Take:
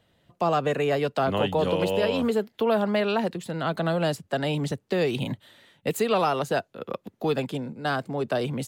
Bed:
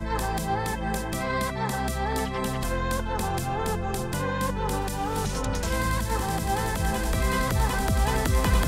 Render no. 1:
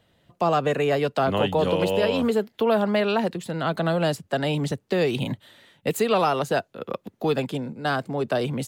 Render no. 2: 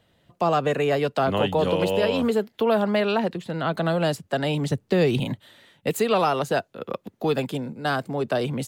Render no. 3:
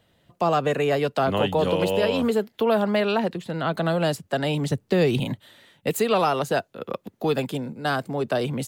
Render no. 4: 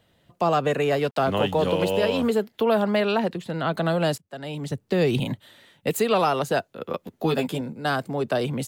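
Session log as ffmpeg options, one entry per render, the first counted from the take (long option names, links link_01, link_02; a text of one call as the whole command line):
ffmpeg -i in.wav -af "volume=2dB" out.wav
ffmpeg -i in.wav -filter_complex "[0:a]asettb=1/sr,asplit=3[link_01][link_02][link_03];[link_01]atrim=end=3.174[link_04];[link_02]atrim=start=3.17:end=3.77,asetpts=PTS-STARTPTS,afade=type=in:duration=0.004:curve=qsin,afade=type=out:start_time=0.596:duration=0.004:curve=qsin,acrossover=split=4500[link_05][link_06];[link_06]acompressor=threshold=-53dB:ratio=4:attack=1:release=60[link_07];[link_05][link_07]amix=inputs=2:normalize=0[link_08];[link_03]atrim=start=3.766[link_09];[link_04][link_08]acrossfade=duration=0.004:curve1=hsin:curve2=qsin[link_10];[link_10][link_09]acrossfade=duration=0.004:curve1=qsin:curve2=hsin,asettb=1/sr,asplit=3[link_11][link_12][link_13];[link_11]atrim=end=4.724[link_14];[link_12]atrim=start=4.72:end=5.2,asetpts=PTS-STARTPTS,afade=type=in:duration=0.004:curve=qsin,afade=type=out:start_time=0.476:duration=0.004:curve=qsin,lowshelf=frequency=210:gain=9[link_15];[link_13]atrim=start=5.196[link_16];[link_14][link_15]acrossfade=duration=0.004:curve1=hsin:curve2=qsin[link_17];[link_17][link_16]acrossfade=duration=0.004:curve1=qsin:curve2=hsin,asettb=1/sr,asplit=3[link_18][link_19][link_20];[link_18]atrim=end=7.344[link_21];[link_19]atrim=start=7.34:end=8.19,asetpts=PTS-STARTPTS,afade=type=in:duration=0.004:curve=qsin,afade=type=out:start_time=0.846:duration=0.004:curve=qsin,highshelf=frequency=12000:gain=8.5[link_22];[link_20]atrim=start=8.186[link_23];[link_21][link_22]acrossfade=duration=0.004:curve1=hsin:curve2=qsin[link_24];[link_24][link_23]acrossfade=duration=0.004:curve1=qsin:curve2=hsin" out.wav
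ffmpeg -i in.wav -af "highshelf=frequency=9100:gain=3.5" out.wav
ffmpeg -i in.wav -filter_complex "[0:a]asettb=1/sr,asplit=3[link_01][link_02][link_03];[link_01]atrim=end=0.824[link_04];[link_02]atrim=start=0.82:end=2.25,asetpts=PTS-STARTPTS,afade=type=in:duration=0.004:curve=qsin,afade=type=out:start_time=1.426:duration=0.004:curve=qsin,aeval=exprs='sgn(val(0))*max(abs(val(0))-0.00447,0)':channel_layout=same[link_05];[link_03]atrim=start=2.246[link_06];[link_04][link_05]acrossfade=duration=0.004:curve1=hsin:curve2=qsin[link_07];[link_07][link_06]acrossfade=duration=0.004:curve1=qsin:curve2=hsin,asettb=1/sr,asplit=3[link_08][link_09][link_10];[link_08]atrim=end=6.884[link_11];[link_09]atrim=start=6.88:end=7.61,asetpts=PTS-STARTPTS,afade=type=in:duration=0.004:curve=qsin,afade=type=out:start_time=0.726:duration=0.004:curve=qsin,asplit=2[link_12][link_13];[link_13]adelay=12,volume=-4dB[link_14];[link_12][link_14]amix=inputs=2:normalize=0,atrim=end_sample=32193[link_15];[link_10]atrim=start=7.606[link_16];[link_11][link_15]acrossfade=duration=0.004:curve1=hsin:curve2=qsin[link_17];[link_17][link_16]acrossfade=duration=0.004:curve1=qsin:curve2=hsin,asplit=2[link_18][link_19];[link_18]atrim=end=4.18,asetpts=PTS-STARTPTS,afade=type=out:start_time=4.176:duration=0.004:curve=hsin:silence=0.0794328[link_20];[link_19]atrim=start=4.18,asetpts=PTS-STARTPTS,afade=type=in:duration=0.98:silence=0.0794328[link_21];[link_20][link_21]concat=n=2:v=0:a=1" out.wav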